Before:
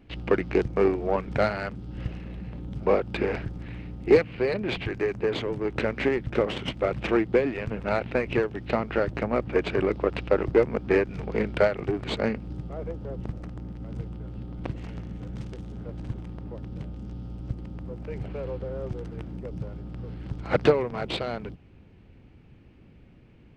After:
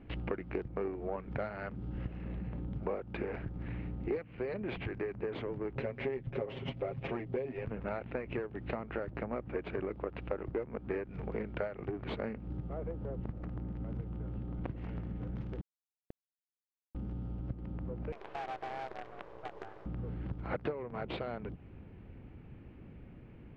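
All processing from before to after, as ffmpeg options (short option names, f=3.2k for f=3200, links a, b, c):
-filter_complex "[0:a]asettb=1/sr,asplit=3[a][b][c];[a]atrim=end=5.754[d];[b]atrim=start=5.75:end=7.65,asetpts=PTS-STARTPTS,afade=t=in:d=0.004:c=qsin,afade=t=out:st=1.896:d=0.004:c=qsin,equalizer=f=1.4k:t=o:w=0.93:g=-7.5,bandreject=f=280:w=5.9,aecho=1:1:7.4:0.86,atrim=end_sample=83790[e];[c]atrim=start=7.646[f];[d][e]acrossfade=d=0.004:c1=hsin:c2=qsin[g];[g][f]acrossfade=d=0.004:c1=qsin:c2=hsin,asettb=1/sr,asplit=3[h][i][j];[h]atrim=end=15.614[k];[i]atrim=start=15.61:end=16.95,asetpts=PTS-STARTPTS,afade=t=in:d=0.004:c=qsin,afade=t=out:st=1.336:d=0.004:c=qsin,equalizer=f=450:t=o:w=2.3:g=3.5,acrusher=bits=2:mix=0:aa=0.5[l];[j]atrim=start=16.946[m];[k][l]acrossfade=d=0.004:c1=hsin:c2=qsin[n];[n][m]acrossfade=d=0.004:c1=qsin:c2=hsin,asettb=1/sr,asplit=3[o][p][q];[o]atrim=end=18.124[r];[p]atrim=start=18.12:end=19.86,asetpts=PTS-STARTPTS,afade=t=in:d=0.004:c=qsin,afade=t=out:st=1.736:d=0.004:c=qsin,highpass=f=630:p=1,afreqshift=260,acrusher=bits=7:dc=4:mix=0:aa=0.000001[s];[q]atrim=start=19.856[t];[r][s]acrossfade=d=0.004:c1=hsin:c2=qsin[u];[u][t]acrossfade=d=0.004:c1=qsin:c2=hsin,lowpass=2.2k,acompressor=threshold=-38dB:ratio=4,volume=1.5dB"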